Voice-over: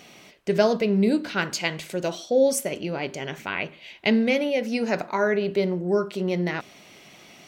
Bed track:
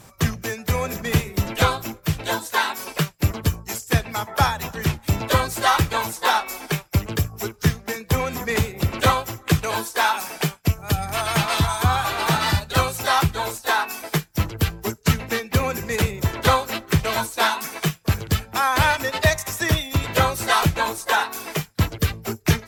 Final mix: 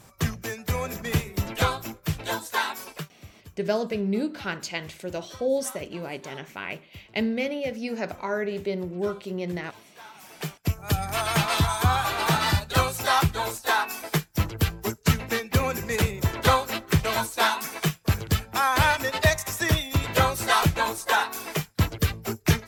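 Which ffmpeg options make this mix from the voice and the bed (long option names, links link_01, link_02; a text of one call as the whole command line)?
ffmpeg -i stem1.wav -i stem2.wav -filter_complex "[0:a]adelay=3100,volume=-5.5dB[link_01];[1:a]volume=19.5dB,afade=type=out:start_time=2.76:duration=0.36:silence=0.0794328,afade=type=in:start_time=10.13:duration=0.83:silence=0.0595662[link_02];[link_01][link_02]amix=inputs=2:normalize=0" out.wav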